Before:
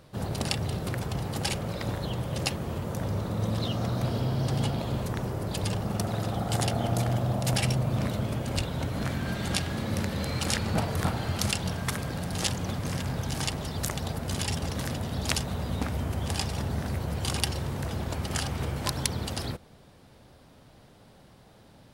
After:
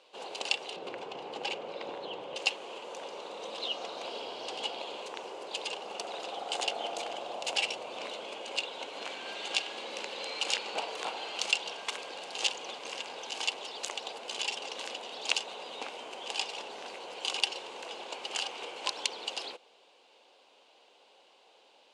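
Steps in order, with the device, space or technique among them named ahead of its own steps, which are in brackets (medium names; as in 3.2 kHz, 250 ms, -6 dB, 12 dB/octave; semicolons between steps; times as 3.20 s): 0.76–2.36 s: RIAA curve playback; phone speaker on a table (cabinet simulation 470–7100 Hz, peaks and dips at 630 Hz -6 dB, 1.3 kHz -8 dB, 1.8 kHz -10 dB, 2.8 kHz +8 dB, 5.5 kHz -5 dB)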